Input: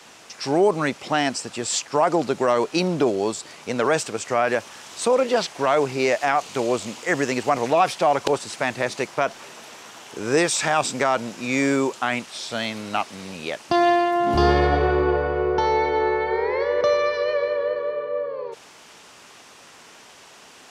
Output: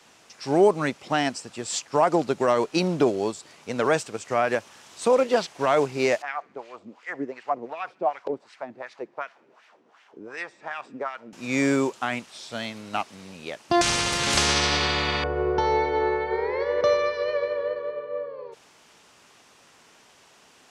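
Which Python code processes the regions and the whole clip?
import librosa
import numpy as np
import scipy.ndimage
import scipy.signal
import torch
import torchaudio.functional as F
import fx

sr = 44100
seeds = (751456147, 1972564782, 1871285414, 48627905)

y = fx.chain(x, sr, fx.wah_lfo(hz=2.7, low_hz=270.0, high_hz=2100.0, q=2.0),
    fx.peak_eq(hz=4700.0, db=2.5, octaves=0.41),
    fx.echo_banded(ms=68, feedback_pct=67, hz=2400.0, wet_db=-23.0), at=(6.22, 11.33))
y = fx.chain(y, sr, fx.lowpass(hz=9500.0, slope=24),
    fx.spectral_comp(ratio=10.0), at=(13.81, 15.24))
y = fx.low_shelf(y, sr, hz=210.0, db=3.5)
y = fx.upward_expand(y, sr, threshold_db=-31.0, expansion=1.5)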